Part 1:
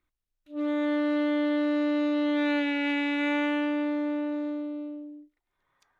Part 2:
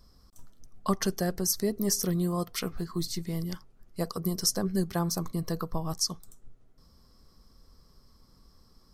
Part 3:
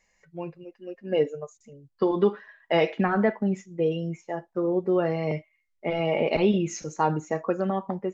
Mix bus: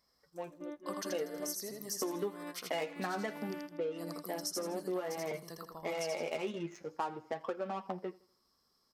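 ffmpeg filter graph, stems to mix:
ffmpeg -i stem1.wav -i stem2.wav -i stem3.wav -filter_complex "[0:a]tiltshelf=frequency=970:gain=6,volume=-13dB[link_01];[1:a]volume=-10dB,asplit=2[link_02][link_03];[link_03]volume=-3.5dB[link_04];[2:a]adynamicsmooth=sensitivity=5:basefreq=890,flanger=delay=7.1:depth=6.2:regen=26:speed=0.54:shape=triangular,volume=2.5dB,asplit=3[link_05][link_06][link_07];[link_06]volume=-23.5dB[link_08];[link_07]apad=whole_len=264426[link_09];[link_01][link_09]sidechaingate=range=-31dB:threshold=-44dB:ratio=16:detection=peak[link_10];[link_04][link_08]amix=inputs=2:normalize=0,aecho=0:1:81|162|243|324|405:1|0.38|0.144|0.0549|0.0209[link_11];[link_10][link_02][link_05][link_11]amix=inputs=4:normalize=0,highpass=frequency=680:poles=1,acompressor=threshold=-34dB:ratio=5" out.wav

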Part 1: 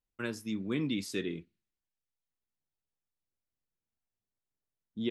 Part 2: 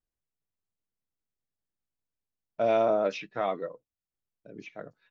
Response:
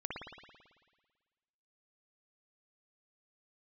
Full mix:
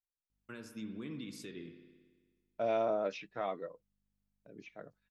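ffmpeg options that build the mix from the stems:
-filter_complex "[0:a]alimiter=level_in=8dB:limit=-24dB:level=0:latency=1:release=350,volume=-8dB,aeval=exprs='val(0)+0.000112*(sin(2*PI*50*n/s)+sin(2*PI*2*50*n/s)/2+sin(2*PI*3*50*n/s)/3+sin(2*PI*4*50*n/s)/4+sin(2*PI*5*50*n/s)/5)':channel_layout=same,adelay=300,volume=-6dB,asplit=2[link_01][link_02];[link_02]volume=-5.5dB[link_03];[1:a]agate=range=-8dB:threshold=-56dB:ratio=16:detection=peak,volume=-7.5dB[link_04];[2:a]atrim=start_sample=2205[link_05];[link_03][link_05]afir=irnorm=-1:irlink=0[link_06];[link_01][link_04][link_06]amix=inputs=3:normalize=0"

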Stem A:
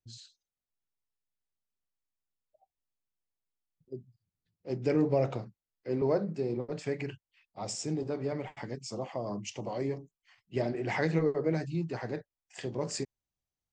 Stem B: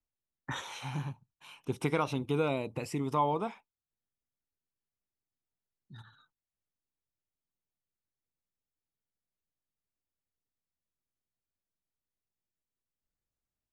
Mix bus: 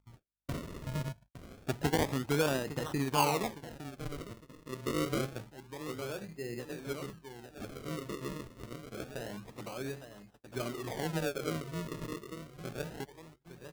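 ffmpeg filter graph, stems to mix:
ffmpeg -i stem1.wav -i stem2.wav -filter_complex "[0:a]aemphasis=mode=reproduction:type=cd,volume=-6.5dB,asplit=2[link_01][link_02];[link_02]volume=-10.5dB[link_03];[1:a]aeval=exprs='val(0)+0.000355*(sin(2*PI*50*n/s)+sin(2*PI*2*50*n/s)/2+sin(2*PI*3*50*n/s)/3+sin(2*PI*4*50*n/s)/4+sin(2*PI*5*50*n/s)/5)':channel_layout=same,volume=0dB,asplit=3[link_04][link_05][link_06];[link_05]volume=-12.5dB[link_07];[link_06]apad=whole_len=605334[link_08];[link_01][link_08]sidechaincompress=threshold=-54dB:ratio=5:attack=5.5:release=800[link_09];[link_03][link_07]amix=inputs=2:normalize=0,aecho=0:1:859|1718|2577|3436|4295|5154:1|0.43|0.185|0.0795|0.0342|0.0147[link_10];[link_09][link_04][link_10]amix=inputs=3:normalize=0,agate=range=-42dB:threshold=-55dB:ratio=16:detection=peak,acompressor=mode=upward:threshold=-49dB:ratio=2.5,acrusher=samples=38:mix=1:aa=0.000001:lfo=1:lforange=38:lforate=0.27" out.wav

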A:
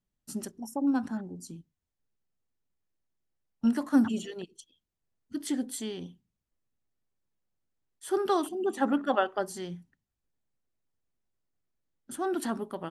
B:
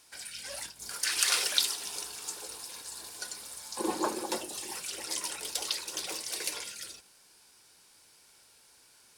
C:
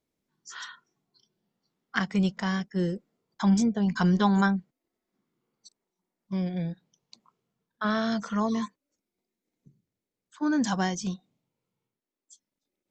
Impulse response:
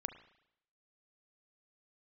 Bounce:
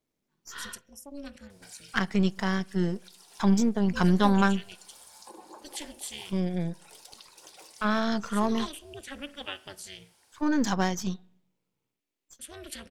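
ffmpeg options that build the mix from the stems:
-filter_complex "[0:a]highshelf=frequency=1600:width_type=q:width=3:gain=13.5,tremolo=f=290:d=0.974,adelay=300,volume=-14dB,asplit=2[link_01][link_02];[link_02]volume=-3.5dB[link_03];[1:a]acompressor=threshold=-42dB:ratio=10,equalizer=frequency=780:width=1.5:gain=7,adelay=1500,volume=-6.5dB,asplit=2[link_04][link_05];[link_05]volume=-19dB[link_06];[2:a]aeval=exprs='if(lt(val(0),0),0.447*val(0),val(0))':channel_layout=same,volume=1dB,asplit=3[link_07][link_08][link_09];[link_08]volume=-13dB[link_10];[link_09]apad=whole_len=470630[link_11];[link_04][link_11]sidechaincompress=threshold=-46dB:ratio=5:attack=16:release=158[link_12];[3:a]atrim=start_sample=2205[link_13];[link_03][link_06][link_10]amix=inputs=3:normalize=0[link_14];[link_14][link_13]afir=irnorm=-1:irlink=0[link_15];[link_01][link_12][link_07][link_15]amix=inputs=4:normalize=0"

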